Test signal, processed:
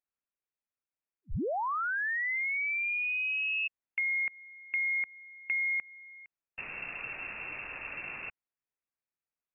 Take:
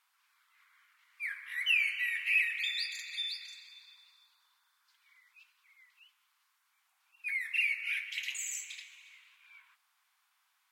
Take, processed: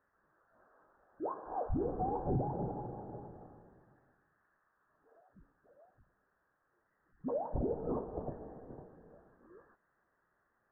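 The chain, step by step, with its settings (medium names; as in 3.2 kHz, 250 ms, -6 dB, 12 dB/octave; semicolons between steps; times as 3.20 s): compression, threshold -29 dBFS; frequency inversion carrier 2.7 kHz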